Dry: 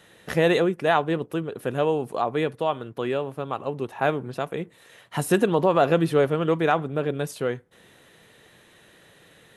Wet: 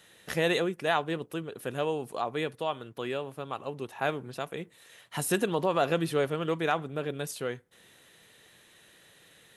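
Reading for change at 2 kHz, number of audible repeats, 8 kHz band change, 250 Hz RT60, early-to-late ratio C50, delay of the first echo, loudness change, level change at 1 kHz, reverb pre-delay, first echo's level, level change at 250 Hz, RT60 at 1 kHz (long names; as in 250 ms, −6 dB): −4.0 dB, no echo audible, +0.5 dB, no reverb audible, no reverb audible, no echo audible, −7.0 dB, −6.5 dB, no reverb audible, no echo audible, −8.0 dB, no reverb audible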